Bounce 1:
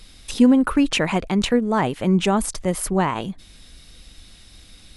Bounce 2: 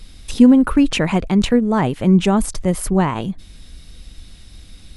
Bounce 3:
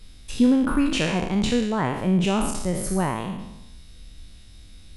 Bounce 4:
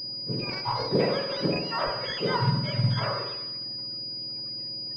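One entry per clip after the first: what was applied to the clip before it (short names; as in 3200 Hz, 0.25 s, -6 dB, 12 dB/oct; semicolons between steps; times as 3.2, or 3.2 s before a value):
low shelf 270 Hz +8.5 dB
spectral trails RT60 0.93 s; gain -8.5 dB
spectrum mirrored in octaves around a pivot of 1100 Hz; small resonant body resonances 560/970 Hz, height 13 dB, ringing for 45 ms; pulse-width modulation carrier 4900 Hz; gain -1.5 dB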